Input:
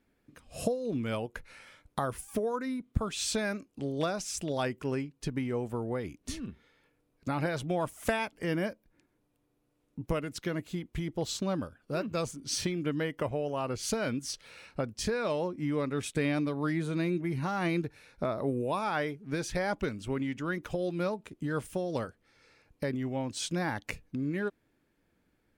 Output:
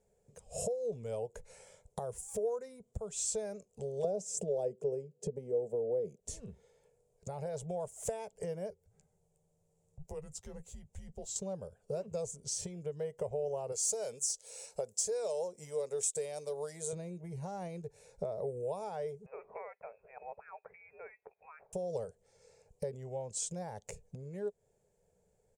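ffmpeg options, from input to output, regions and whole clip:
-filter_complex "[0:a]asettb=1/sr,asplit=3[s0][s1][s2];[s0]atrim=end=4.044[s3];[s1]atrim=start=4.04:end=6.2,asetpts=PTS-STARTPTS,afade=t=in:d=0.004:c=qsin,afade=t=out:st=2.156:d=0.004:c=qsin,highpass=f=150:w=0.5412,highpass=f=150:w=1.3066,lowshelf=f=770:t=q:w=1.5:g=12.5[s4];[s2]atrim=start=6.196[s5];[s3][s4]acrossfade=d=0.004:c1=hsin:c2=qsin[s6];[s6][s5]acrossfade=d=0.004:c1=qsin:c2=hsin,asettb=1/sr,asplit=3[s7][s8][s9];[s7]atrim=end=8.704[s10];[s8]atrim=start=8.7:end=11.36,asetpts=PTS-STARTPTS,afade=t=in:d=0.004:c=qsin,afade=t=out:st=2.656:d=0.004:c=qsin,acompressor=threshold=0.00126:ratio=1.5:attack=3.2:release=140:knee=1:detection=peak,afreqshift=-130,asplit=2[s11][s12];[s12]adelay=13,volume=0.316[s13];[s11][s13]amix=inputs=2:normalize=0,atrim=end_sample=117306[s14];[s9]atrim=start=11.356[s15];[s10][s14]acrossfade=d=0.004:c1=hsin:c2=qsin[s16];[s16][s15]acrossfade=d=0.004:c1=qsin:c2=hsin,asettb=1/sr,asplit=3[s17][s18][s19];[s17]atrim=end=13.724[s20];[s18]atrim=start=13.72:end=16.93,asetpts=PTS-STARTPTS,afade=t=in:d=0.004:c=qsin,afade=t=out:st=3.206:d=0.004:c=qsin,bass=f=250:g=-14,treble=f=4000:g=13,asoftclip=type=hard:threshold=0.0841[s21];[s19]atrim=start=16.926[s22];[s20][s21]acrossfade=d=0.004:c1=hsin:c2=qsin[s23];[s23][s22]acrossfade=d=0.004:c1=qsin:c2=hsin,asettb=1/sr,asplit=3[s24][s25][s26];[s24]atrim=end=19.264[s27];[s25]atrim=start=19.26:end=21.73,asetpts=PTS-STARTPTS,afade=t=in:d=0.004:c=qsin,afade=t=out:st=2.466:d=0.004:c=qsin,highpass=1100,acompressor=mode=upward:threshold=0.00282:ratio=2.5:attack=3.2:release=140:knee=2.83:detection=peak,lowpass=f=2400:t=q:w=0.5098,lowpass=f=2400:t=q:w=0.6013,lowpass=f=2400:t=q:w=0.9,lowpass=f=2400:t=q:w=2.563,afreqshift=-2800[s28];[s26]atrim=start=21.726[s29];[s27][s28]acrossfade=d=0.004:c1=hsin:c2=qsin[s30];[s30][s29]acrossfade=d=0.004:c1=qsin:c2=hsin,acompressor=threshold=0.0126:ratio=4,firequalizer=gain_entry='entry(190,0);entry(290,-25);entry(420,9);entry(840,1);entry(1200,-13);entry(2600,-11);entry(4200,-8);entry(7300,12);entry(12000,-6)':delay=0.05:min_phase=1,volume=0.891"

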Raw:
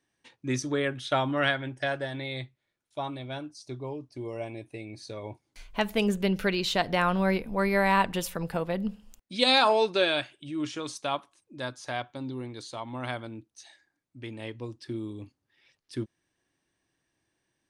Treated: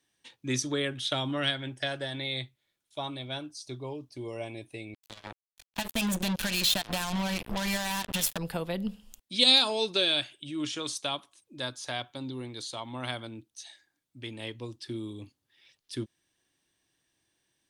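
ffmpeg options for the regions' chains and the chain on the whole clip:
-filter_complex "[0:a]asettb=1/sr,asplit=3[s0][s1][s2];[s0]atrim=end=4.944[s3];[s1]atrim=start=4.94:end=8.38,asetpts=PTS-STARTPTS,afade=t=in:d=0.004:c=qsin,afade=t=out:st=3.436:d=0.004:c=qsin,aecho=1:1:1.2:0.86,atrim=end_sample=151704,acompressor=threshold=0.0562:ratio=10:attack=3.2:release=140:knee=1:detection=peak,acrusher=bits=4:mix=0:aa=0.5[s4];[s2]atrim=start=8.376[s5];[s3][s4]acrossfade=d=0.004:c1=hsin:c2=qsin[s6];[s6][s5]acrossfade=d=0.004:c1=qsin:c2=hsin,aemphasis=mode=production:type=cd,acrossover=split=410|3000[s7][s8][s9];[s8]acompressor=threshold=0.0282:ratio=6[s10];[s7][s10][s9]amix=inputs=3:normalize=0,equalizer=f=3400:w=2.2:g=6,volume=0.841"

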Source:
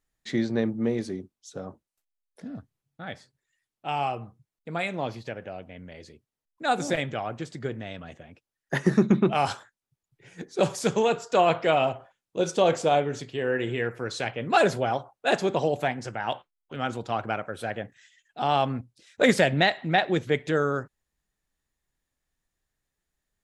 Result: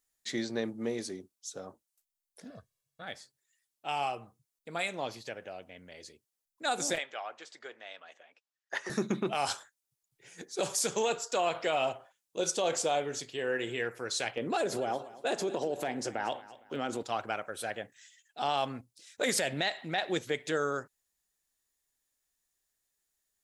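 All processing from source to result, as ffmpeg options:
-filter_complex "[0:a]asettb=1/sr,asplit=3[s0][s1][s2];[s0]atrim=end=2.504[s3];[s1]atrim=start=2.5:end=3.02,asetpts=PTS-STARTPTS,afade=t=in:d=0.004:c=qsin,afade=t=out:st=0.516:d=0.004:c=qsin,highshelf=f=8000:g=-5.5,aecho=1:1:1.8:0.79,atrim=end_sample=22932[s4];[s2]atrim=start=3.016[s5];[s3][s4]acrossfade=d=0.004:c1=hsin:c2=qsin[s6];[s6][s5]acrossfade=d=0.004:c1=qsin:c2=hsin,asettb=1/sr,asplit=3[s7][s8][s9];[s7]atrim=end=6.984[s10];[s8]atrim=start=6.98:end=8.9,asetpts=PTS-STARTPTS,afade=t=in:d=0.004:c=qsin,afade=t=out:st=1.916:d=0.004:c=qsin,highpass=700,lowpass=6100,highshelf=f=3500:g=-7[s11];[s9]atrim=start=8.896[s12];[s10][s11]acrossfade=d=0.004:c1=hsin:c2=qsin[s13];[s13][s12]acrossfade=d=0.004:c1=qsin:c2=hsin,asettb=1/sr,asplit=3[s14][s15][s16];[s14]atrim=end=14.374[s17];[s15]atrim=start=14.37:end=17.03,asetpts=PTS-STARTPTS,afade=t=in:d=0.004:c=qsin,afade=t=out:st=2.656:d=0.004:c=qsin,equalizer=f=320:t=o:w=2.2:g=10.5,acompressor=threshold=0.0794:ratio=6:attack=3.2:release=140:knee=1:detection=peak,aecho=1:1:230|460|690:0.126|0.0441|0.0154,atrim=end_sample=117306[s18];[s16]atrim=start=17.026[s19];[s17][s18]acrossfade=d=0.004:c1=hsin:c2=qsin[s20];[s20][s19]acrossfade=d=0.004:c1=qsin:c2=hsin,bass=f=250:g=-9,treble=f=4000:g=5,alimiter=limit=0.168:level=0:latency=1:release=59,highshelf=f=4100:g=8,volume=0.562"

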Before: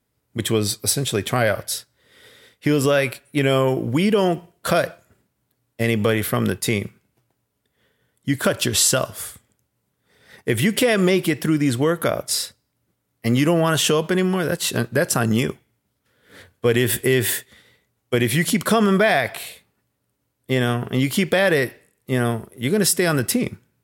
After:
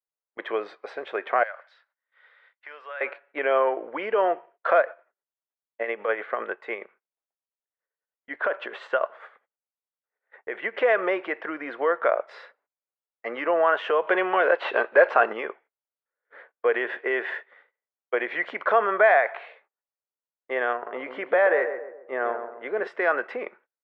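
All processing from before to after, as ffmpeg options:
-filter_complex "[0:a]asettb=1/sr,asplit=3[s0][s1][s2];[s0]atrim=end=1.434[s3];[s1]atrim=start=1.43:end=3.01,asetpts=PTS-STARTPTS,afade=t=in:d=0.004:c=qsin,afade=t=out:st=1.576:d=0.004:c=qsin,highpass=1000,equalizer=f=4200:t=o:w=0.72:g=6.5,acompressor=threshold=0.00251:ratio=1.5:attack=3.2:release=140:knee=1:detection=peak[s4];[s2]atrim=start=3.006[s5];[s3][s4]acrossfade=d=0.004:c1=hsin:c2=qsin[s6];[s6][s5]acrossfade=d=0.004:c1=qsin:c2=hsin,asettb=1/sr,asplit=3[s7][s8][s9];[s7]atrim=end=4.804[s10];[s8]atrim=start=4.8:end=10.76,asetpts=PTS-STARTPTS,afade=t=in:d=0.004:c=qsin,afade=t=out:st=5.956:d=0.004:c=qsin,equalizer=f=5200:w=4.8:g=-6.5,tremolo=f=9.9:d=0.54[s11];[s9]atrim=start=10.756[s12];[s10][s11]acrossfade=d=0.004:c1=hsin:c2=qsin[s13];[s13][s12]acrossfade=d=0.004:c1=qsin:c2=hsin,asettb=1/sr,asplit=3[s14][s15][s16];[s14]atrim=end=14.074[s17];[s15]atrim=start=14.07:end=15.33,asetpts=PTS-STARTPTS,afade=t=in:d=0.004:c=qsin,afade=t=out:st=1.256:d=0.004:c=qsin,highshelf=f=2200:t=q:w=1.5:g=7,acontrast=66,asplit=2[s18][s19];[s19]highpass=f=720:p=1,volume=2.82,asoftclip=type=tanh:threshold=1[s20];[s18][s20]amix=inputs=2:normalize=0,lowpass=f=1300:p=1,volume=0.501[s21];[s16]atrim=start=15.326[s22];[s17][s21]acrossfade=d=0.004:c1=hsin:c2=qsin[s23];[s23][s22]acrossfade=d=0.004:c1=qsin:c2=hsin,asettb=1/sr,asplit=3[s24][s25][s26];[s24]atrim=end=20.734[s27];[s25]atrim=start=20.73:end=22.87,asetpts=PTS-STARTPTS,afade=t=in:d=0.004:c=qsin,afade=t=out:st=2.136:d=0.004:c=qsin,equalizer=f=5100:w=0.4:g=-6,asplit=2[s28][s29];[s29]adelay=134,lowpass=f=1200:p=1,volume=0.447,asplit=2[s30][s31];[s31]adelay=134,lowpass=f=1200:p=1,volume=0.46,asplit=2[s32][s33];[s33]adelay=134,lowpass=f=1200:p=1,volume=0.46,asplit=2[s34][s35];[s35]adelay=134,lowpass=f=1200:p=1,volume=0.46,asplit=2[s36][s37];[s37]adelay=134,lowpass=f=1200:p=1,volume=0.46[s38];[s28][s30][s32][s34][s36][s38]amix=inputs=6:normalize=0,atrim=end_sample=94374[s39];[s26]atrim=start=22.866[s40];[s27][s39]acrossfade=d=0.004:c1=hsin:c2=qsin[s41];[s41][s40]acrossfade=d=0.004:c1=qsin:c2=hsin,highpass=f=520:w=0.5412,highpass=f=520:w=1.3066,agate=range=0.0631:threshold=0.00251:ratio=16:detection=peak,lowpass=f=1900:w=0.5412,lowpass=f=1900:w=1.3066,volume=1.19"

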